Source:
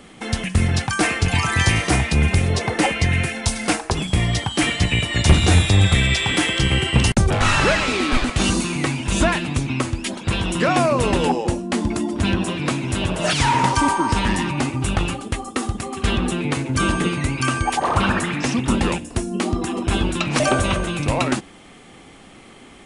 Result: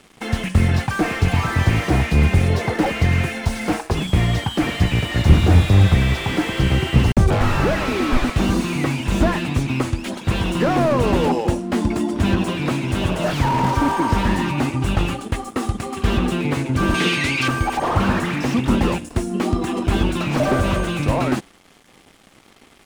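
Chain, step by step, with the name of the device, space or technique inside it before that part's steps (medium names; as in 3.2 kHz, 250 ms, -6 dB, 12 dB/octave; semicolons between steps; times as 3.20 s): early transistor amplifier (crossover distortion -44 dBFS; slew-rate limiter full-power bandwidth 86 Hz); 16.94–17.48 s: frequency weighting D; trim +2.5 dB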